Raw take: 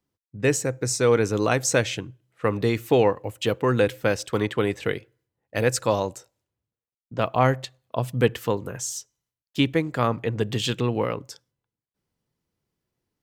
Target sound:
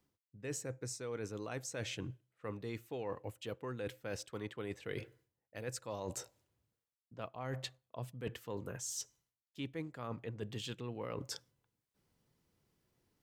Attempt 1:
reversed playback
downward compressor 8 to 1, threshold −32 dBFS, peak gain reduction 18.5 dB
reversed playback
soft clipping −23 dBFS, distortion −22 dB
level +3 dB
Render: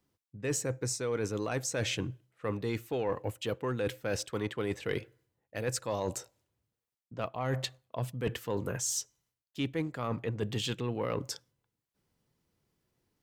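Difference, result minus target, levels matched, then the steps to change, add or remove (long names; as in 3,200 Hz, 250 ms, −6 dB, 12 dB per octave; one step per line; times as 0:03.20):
downward compressor: peak gain reduction −9.5 dB
change: downward compressor 8 to 1, threshold −43 dBFS, peak gain reduction 28 dB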